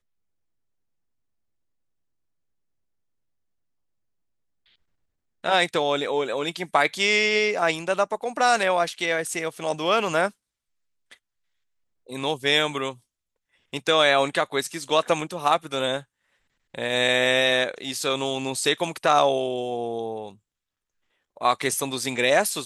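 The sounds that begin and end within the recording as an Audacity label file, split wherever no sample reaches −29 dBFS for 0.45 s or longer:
5.450000	10.280000	sound
12.110000	12.910000	sound
13.740000	15.990000	sound
16.750000	20.280000	sound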